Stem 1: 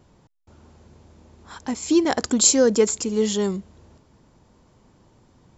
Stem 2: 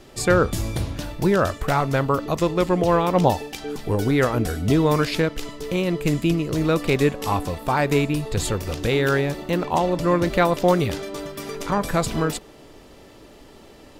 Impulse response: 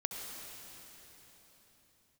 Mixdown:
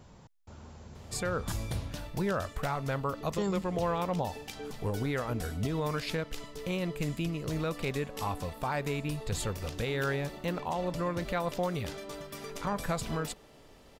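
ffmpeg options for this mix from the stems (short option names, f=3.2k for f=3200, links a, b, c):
-filter_complex "[0:a]volume=2.5dB,asplit=3[a][b][c];[a]atrim=end=1.52,asetpts=PTS-STARTPTS,afade=t=out:st=1.516:d=0.004:c=hsin[d];[b]atrim=start=1.52:end=3.38,asetpts=PTS-STARTPTS,volume=0[e];[c]atrim=start=3.38,asetpts=PTS-STARTPTS,afade=t=in:d=0.004:c=hsin[f];[d][e][f]concat=n=3:v=0:a=1[g];[1:a]adelay=950,volume=-8.5dB[h];[g][h]amix=inputs=2:normalize=0,equalizer=f=330:w=2.5:g=-6,alimiter=limit=-21.5dB:level=0:latency=1:release=144"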